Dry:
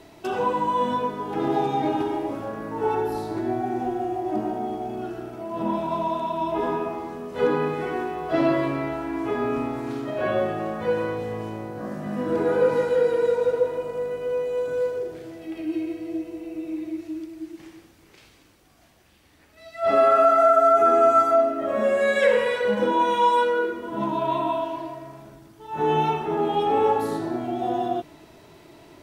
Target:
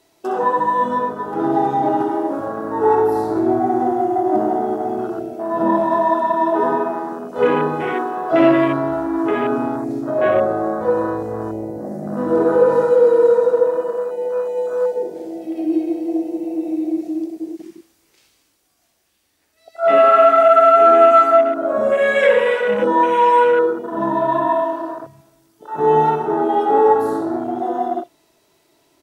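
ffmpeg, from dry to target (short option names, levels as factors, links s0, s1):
-filter_complex "[0:a]acontrast=63,bass=f=250:g=-7,treble=f=4000:g=10,aecho=1:1:21|64:0.266|0.376,dynaudnorm=f=160:g=31:m=2.51,asettb=1/sr,asplit=3[s0][s1][s2];[s0]atrim=end=9.764[s3];[s1]atrim=start=9.76:end=12.17,asetpts=PTS-STARTPTS,afade=t=in:d=0.004:c=qsin,afade=t=out:st=2.406:d=0.004:c=qsin,equalizer=f=3000:t=o:w=0.73:g=-9.5[s4];[s2]atrim=start=12.166[s5];[s3][s4]acrossfade=d=0.004:c1=hsin:c2=qsin[s6];[s6][s5]acrossfade=d=0.004:c1=qsin:c2=hsin,afwtdn=0.0794,volume=0.891"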